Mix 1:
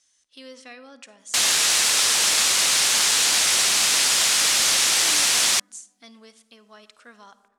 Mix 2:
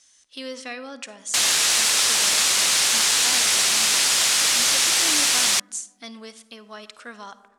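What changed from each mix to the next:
speech +8.5 dB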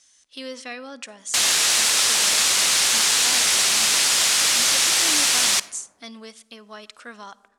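speech: send -6.5 dB; background: send on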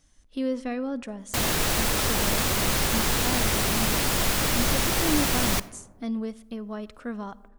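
master: remove frequency weighting ITU-R 468

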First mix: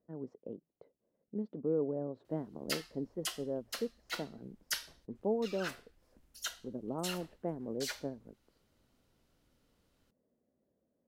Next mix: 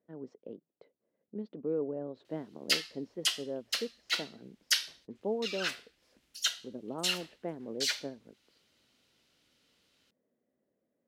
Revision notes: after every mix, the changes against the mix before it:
master: add frequency weighting D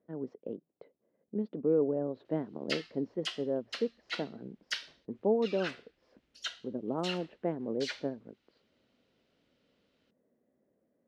speech +6.5 dB; master: add tape spacing loss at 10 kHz 22 dB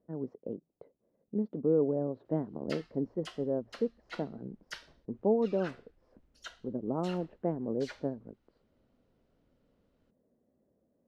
master: remove frequency weighting D

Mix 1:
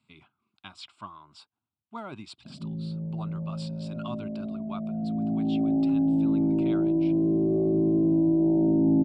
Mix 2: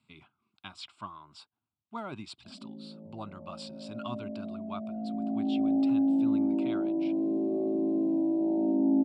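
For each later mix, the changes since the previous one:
background: add rippled Chebyshev high-pass 180 Hz, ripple 6 dB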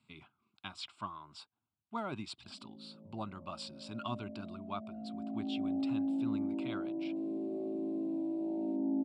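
background -8.5 dB

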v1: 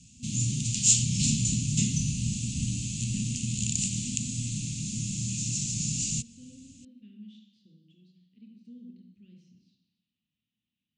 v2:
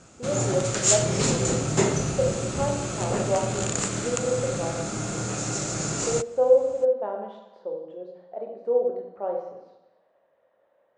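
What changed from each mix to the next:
master: remove Chebyshev band-stop 240–2700 Hz, order 4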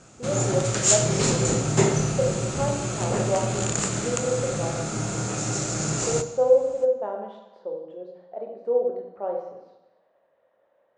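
background: send on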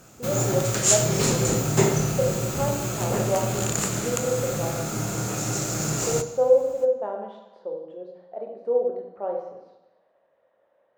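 master: remove steep low-pass 9.4 kHz 72 dB/octave

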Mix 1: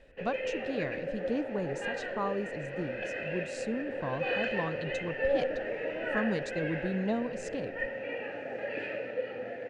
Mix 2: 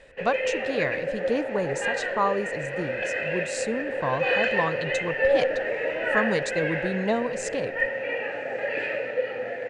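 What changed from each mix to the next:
background: send -8.0 dB; master: add ten-band graphic EQ 125 Hz +5 dB, 500 Hz +7 dB, 1 kHz +8 dB, 2 kHz +9 dB, 4 kHz +5 dB, 8 kHz +10 dB, 16 kHz +10 dB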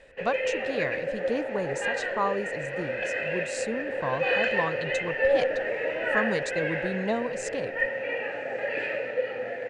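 reverb: off

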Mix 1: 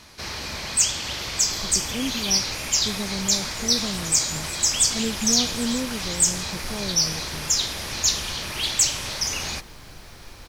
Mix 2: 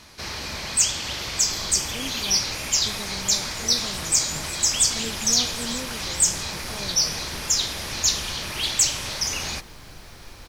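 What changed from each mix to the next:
speech: add bass shelf 450 Hz -11 dB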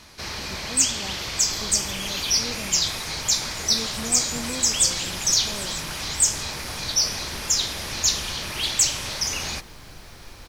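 speech: entry -1.25 s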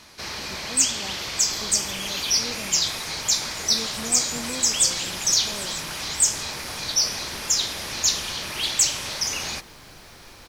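master: add bass shelf 110 Hz -9 dB

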